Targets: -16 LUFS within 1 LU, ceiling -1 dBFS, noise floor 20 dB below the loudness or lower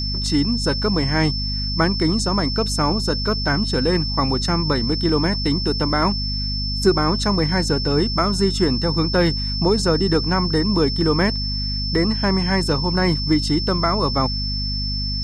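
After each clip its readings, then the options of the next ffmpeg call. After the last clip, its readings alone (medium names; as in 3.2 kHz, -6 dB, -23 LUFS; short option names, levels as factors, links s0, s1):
hum 50 Hz; highest harmonic 250 Hz; hum level -23 dBFS; steady tone 5.3 kHz; tone level -25 dBFS; loudness -19.5 LUFS; peak level -3.5 dBFS; loudness target -16.0 LUFS
-> -af "bandreject=f=50:t=h:w=4,bandreject=f=100:t=h:w=4,bandreject=f=150:t=h:w=4,bandreject=f=200:t=h:w=4,bandreject=f=250:t=h:w=4"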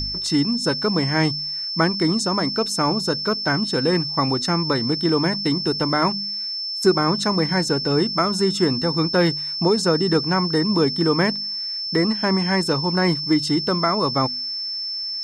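hum not found; steady tone 5.3 kHz; tone level -25 dBFS
-> -af "bandreject=f=5300:w=30"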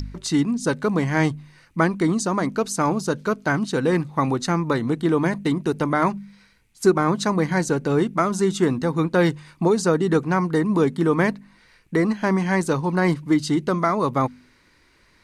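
steady tone not found; loudness -22.0 LUFS; peak level -4.5 dBFS; loudness target -16.0 LUFS
-> -af "volume=2,alimiter=limit=0.891:level=0:latency=1"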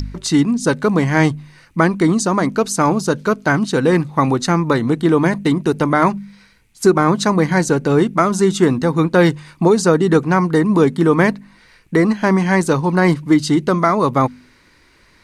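loudness -16.0 LUFS; peak level -1.0 dBFS; noise floor -52 dBFS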